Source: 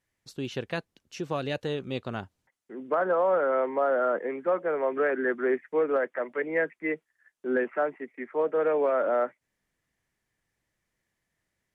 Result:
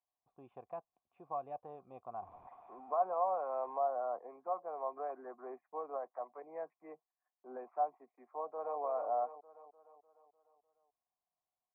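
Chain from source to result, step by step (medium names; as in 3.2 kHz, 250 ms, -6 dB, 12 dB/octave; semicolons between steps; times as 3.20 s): 2.22–3.79 s: jump at every zero crossing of -33.5 dBFS; cascade formant filter a; 8.27–8.80 s: echo throw 300 ms, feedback 55%, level -8 dB; trim +1.5 dB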